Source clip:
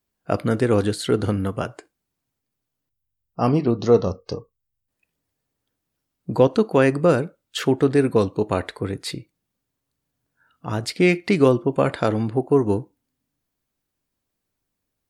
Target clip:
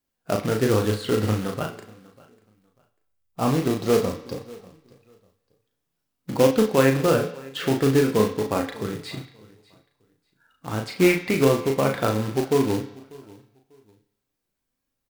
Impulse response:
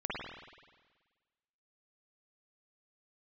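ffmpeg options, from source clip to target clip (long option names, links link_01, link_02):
-filter_complex "[0:a]acrossover=split=3900[link_01][link_02];[link_02]acompressor=threshold=-42dB:ratio=4:attack=1:release=60[link_03];[link_01][link_03]amix=inputs=2:normalize=0,aecho=1:1:594|1188:0.075|0.0165,flanger=delay=3.6:depth=6.2:regen=63:speed=0.47:shape=sinusoidal,acrusher=bits=3:mode=log:mix=0:aa=0.000001,asplit=2[link_04][link_05];[link_05]adelay=37,volume=-4.5dB[link_06];[link_04][link_06]amix=inputs=2:normalize=0,asplit=2[link_07][link_08];[1:a]atrim=start_sample=2205,asetrate=70560,aresample=44100,lowshelf=frequency=450:gain=-9[link_09];[link_08][link_09]afir=irnorm=-1:irlink=0,volume=-8.5dB[link_10];[link_07][link_10]amix=inputs=2:normalize=0"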